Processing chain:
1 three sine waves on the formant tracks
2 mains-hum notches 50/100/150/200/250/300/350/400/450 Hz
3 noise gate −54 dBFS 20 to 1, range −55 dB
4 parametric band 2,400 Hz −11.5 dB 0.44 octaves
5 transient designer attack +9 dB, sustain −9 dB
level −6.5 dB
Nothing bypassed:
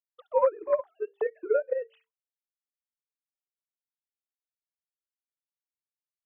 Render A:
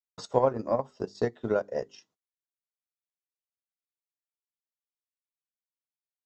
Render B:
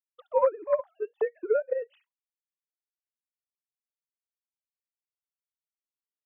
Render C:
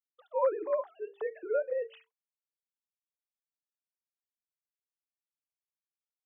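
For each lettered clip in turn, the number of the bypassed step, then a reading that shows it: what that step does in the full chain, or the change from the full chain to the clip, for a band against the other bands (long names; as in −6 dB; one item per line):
1, 250 Hz band +14.0 dB
2, 250 Hz band +1.5 dB
5, change in crest factor −1.5 dB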